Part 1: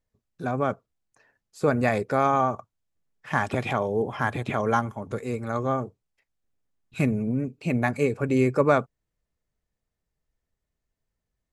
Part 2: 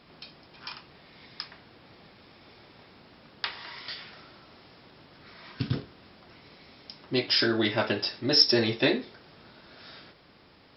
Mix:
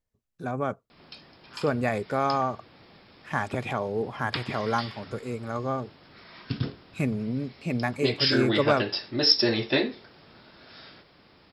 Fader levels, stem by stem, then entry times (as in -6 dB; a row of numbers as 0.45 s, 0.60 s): -3.5 dB, 0.0 dB; 0.00 s, 0.90 s